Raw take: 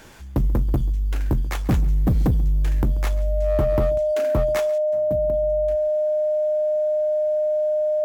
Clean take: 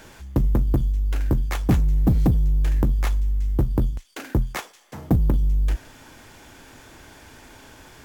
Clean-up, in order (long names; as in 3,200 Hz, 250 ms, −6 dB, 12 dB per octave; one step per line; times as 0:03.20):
clipped peaks rebuilt −14.5 dBFS
notch filter 610 Hz, Q 30
echo removal 136 ms −20 dB
level correction +12 dB, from 0:04.78